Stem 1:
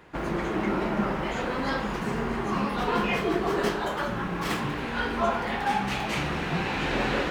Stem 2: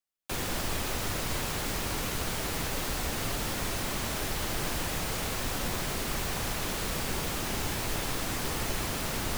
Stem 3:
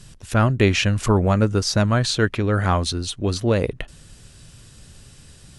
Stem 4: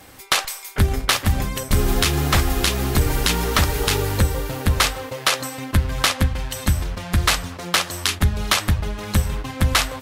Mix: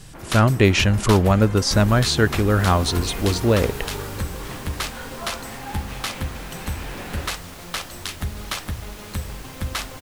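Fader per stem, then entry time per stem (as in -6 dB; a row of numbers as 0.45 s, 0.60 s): -9.0 dB, -8.0 dB, +1.5 dB, -10.0 dB; 0.00 s, 2.30 s, 0.00 s, 0.00 s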